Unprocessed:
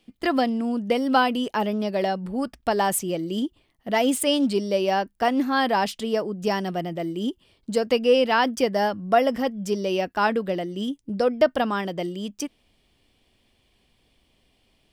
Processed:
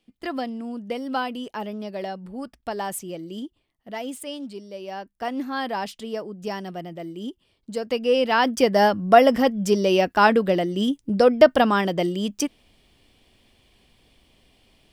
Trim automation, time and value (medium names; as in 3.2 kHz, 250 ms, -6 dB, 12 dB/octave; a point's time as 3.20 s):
3.29 s -7 dB
4.71 s -14.5 dB
5.34 s -6 dB
7.73 s -6 dB
8.83 s +5.5 dB